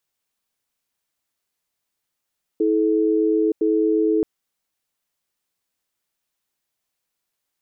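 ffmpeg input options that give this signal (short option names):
-f lavfi -i "aevalsrc='0.119*(sin(2*PI*323*t)+sin(2*PI*431*t))*clip(min(mod(t,1.01),0.92-mod(t,1.01))/0.005,0,1)':d=1.63:s=44100"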